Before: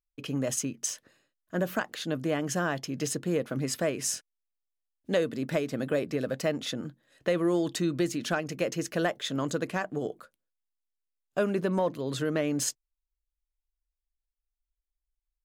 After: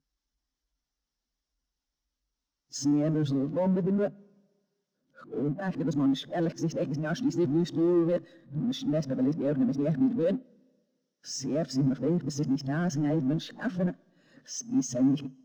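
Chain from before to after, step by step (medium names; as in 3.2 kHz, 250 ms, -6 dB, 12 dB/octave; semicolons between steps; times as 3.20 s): reverse the whole clip; cabinet simulation 100–6500 Hz, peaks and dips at 150 Hz +9 dB, 260 Hz +9 dB, 2.4 kHz -5 dB, 5.6 kHz +6 dB; power-law waveshaper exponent 0.5; Schroeder reverb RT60 2.3 s, combs from 27 ms, DRR 18.5 dB; spectral contrast expander 1.5:1; trim -2 dB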